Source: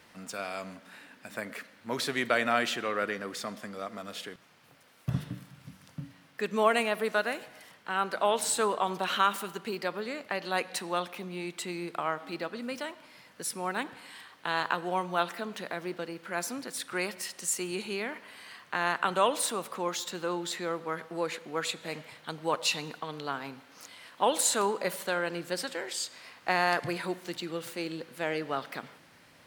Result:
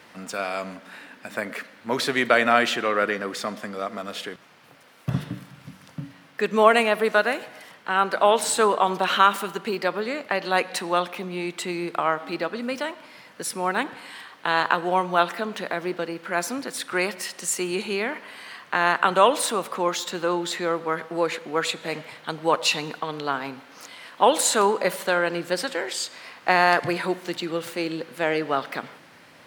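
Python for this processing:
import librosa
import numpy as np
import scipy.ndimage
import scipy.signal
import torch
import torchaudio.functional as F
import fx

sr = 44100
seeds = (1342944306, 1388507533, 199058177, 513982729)

y = fx.highpass(x, sr, hz=170.0, slope=6)
y = fx.high_shelf(y, sr, hz=4200.0, db=-6.0)
y = y * librosa.db_to_amplitude(9.0)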